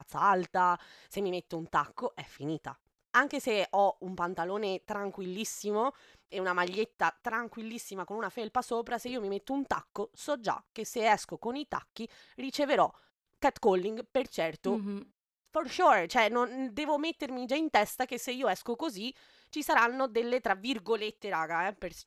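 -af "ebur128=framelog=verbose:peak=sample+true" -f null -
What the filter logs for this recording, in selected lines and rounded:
Integrated loudness:
  I:         -31.7 LUFS
  Threshold: -42.0 LUFS
Loudness range:
  LRA:         4.4 LU
  Threshold: -52.1 LUFS
  LRA low:   -34.3 LUFS
  LRA high:  -29.9 LUFS
Sample peak:
  Peak:      -11.2 dBFS
True peak:
  Peak:      -11.2 dBFS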